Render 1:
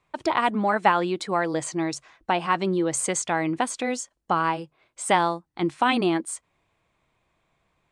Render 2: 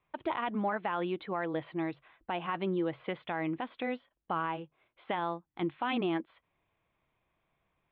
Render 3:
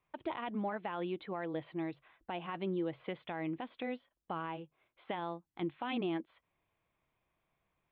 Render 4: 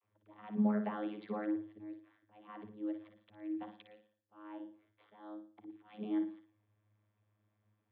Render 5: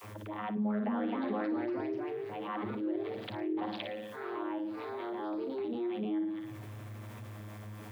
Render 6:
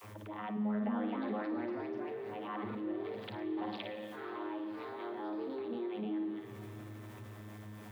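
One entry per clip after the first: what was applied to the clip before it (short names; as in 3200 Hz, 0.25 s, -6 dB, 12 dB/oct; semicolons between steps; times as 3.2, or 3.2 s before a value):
steep low-pass 3600 Hz 72 dB/oct; limiter -15 dBFS, peak gain reduction 10 dB; gain -7.5 dB
dynamic EQ 1300 Hz, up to -5 dB, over -47 dBFS, Q 1; gain -3.5 dB
auto swell 0.526 s; vocoder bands 32, saw 105 Hz; flutter echo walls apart 9.7 m, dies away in 0.42 s; gain +4.5 dB
echoes that change speed 0.356 s, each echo +2 st, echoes 3, each echo -6 dB; fast leveller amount 70%; gain -3 dB
reverb RT60 5.3 s, pre-delay 43 ms, DRR 8 dB; gain -3.5 dB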